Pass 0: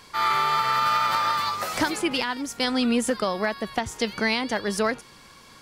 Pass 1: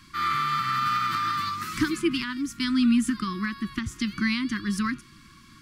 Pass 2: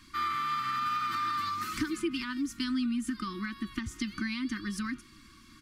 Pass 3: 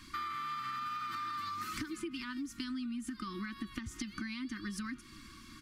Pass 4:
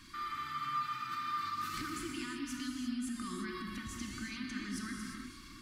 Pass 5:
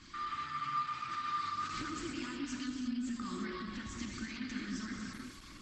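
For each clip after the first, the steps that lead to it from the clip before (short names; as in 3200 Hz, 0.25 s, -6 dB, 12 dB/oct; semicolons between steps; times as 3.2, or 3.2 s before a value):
Chebyshev band-stop 340–1100 Hz, order 4; tilt shelf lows +4.5 dB, about 780 Hz
compressor 5:1, threshold -27 dBFS, peak gain reduction 8.5 dB; comb 3.3 ms, depth 51%; gain -4 dB
compressor 6:1, threshold -40 dBFS, peak gain reduction 13 dB; gain +2.5 dB
transient shaper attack -4 dB, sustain +5 dB; non-linear reverb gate 0.38 s flat, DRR 0 dB; gain -2.5 dB
gain +1 dB; Opus 12 kbps 48000 Hz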